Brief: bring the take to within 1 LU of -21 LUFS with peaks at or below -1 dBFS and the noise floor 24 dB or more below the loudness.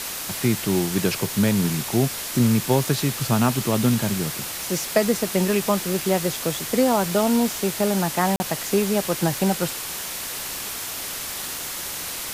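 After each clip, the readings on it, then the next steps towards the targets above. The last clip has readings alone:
dropouts 1; longest dropout 40 ms; noise floor -31 dBFS; noise floor target -47 dBFS; loudness -22.5 LUFS; peak level -5.0 dBFS; loudness target -21.0 LUFS
-> interpolate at 8.36 s, 40 ms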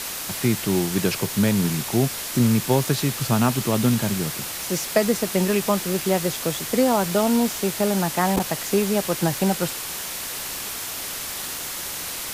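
dropouts 0; noise floor -31 dBFS; noise floor target -47 dBFS
-> noise reduction 16 dB, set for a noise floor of -31 dBFS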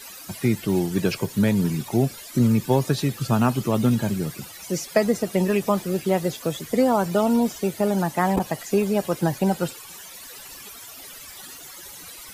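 noise floor -41 dBFS; noise floor target -47 dBFS
-> noise reduction 6 dB, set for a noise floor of -41 dBFS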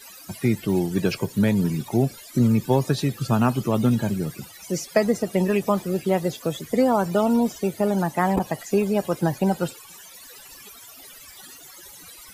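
noise floor -45 dBFS; noise floor target -47 dBFS
-> noise reduction 6 dB, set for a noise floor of -45 dBFS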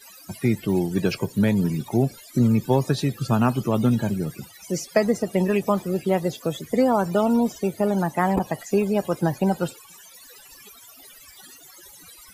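noise floor -48 dBFS; loudness -23.0 LUFS; peak level -5.5 dBFS; loudness target -21.0 LUFS
-> trim +2 dB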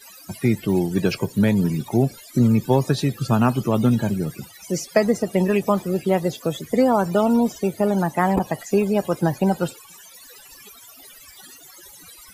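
loudness -21.0 LUFS; peak level -3.5 dBFS; noise floor -46 dBFS

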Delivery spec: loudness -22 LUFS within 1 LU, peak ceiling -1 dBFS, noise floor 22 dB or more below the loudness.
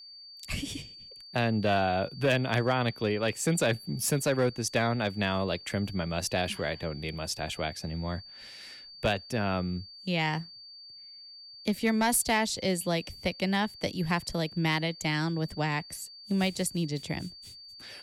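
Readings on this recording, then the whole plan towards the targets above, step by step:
clipped samples 0.2%; clipping level -18.5 dBFS; steady tone 4.6 kHz; tone level -46 dBFS; loudness -30.0 LUFS; peak level -18.5 dBFS; loudness target -22.0 LUFS
-> clip repair -18.5 dBFS; band-stop 4.6 kHz, Q 30; trim +8 dB

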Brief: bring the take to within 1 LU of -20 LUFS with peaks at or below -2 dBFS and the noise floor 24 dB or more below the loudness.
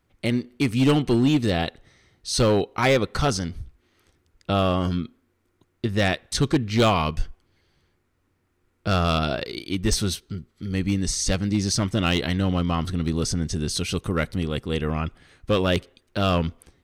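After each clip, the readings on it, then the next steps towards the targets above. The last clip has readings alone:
clipped samples 0.9%; clipping level -13.0 dBFS; loudness -24.0 LUFS; peak level -13.0 dBFS; loudness target -20.0 LUFS
-> clip repair -13 dBFS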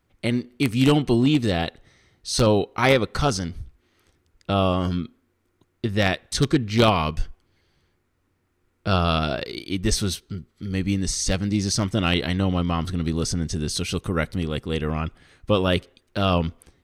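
clipped samples 0.0%; loudness -23.5 LUFS; peak level -4.0 dBFS; loudness target -20.0 LUFS
-> trim +3.5 dB; peak limiter -2 dBFS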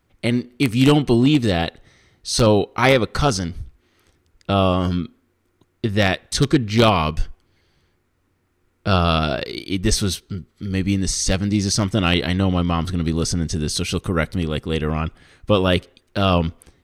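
loudness -20.0 LUFS; peak level -2.0 dBFS; noise floor -66 dBFS

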